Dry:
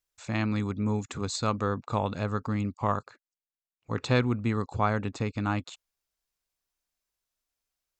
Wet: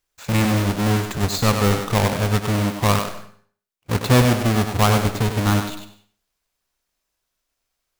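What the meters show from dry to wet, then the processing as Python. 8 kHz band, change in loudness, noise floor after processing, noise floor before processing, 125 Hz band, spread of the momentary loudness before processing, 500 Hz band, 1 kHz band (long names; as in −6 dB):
+15.0 dB, +10.0 dB, −79 dBFS, below −85 dBFS, +11.5 dB, 7 LU, +9.0 dB, +8.5 dB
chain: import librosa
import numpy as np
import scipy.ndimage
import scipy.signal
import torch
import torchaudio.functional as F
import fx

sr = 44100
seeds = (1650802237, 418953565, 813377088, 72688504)

y = fx.halfwave_hold(x, sr)
y = fx.echo_thinned(y, sr, ms=98, feedback_pct=20, hz=190.0, wet_db=-6)
y = fx.rev_freeverb(y, sr, rt60_s=0.45, hf_ratio=0.7, predelay_ms=105, drr_db=14.5)
y = F.gain(torch.from_numpy(y), 4.5).numpy()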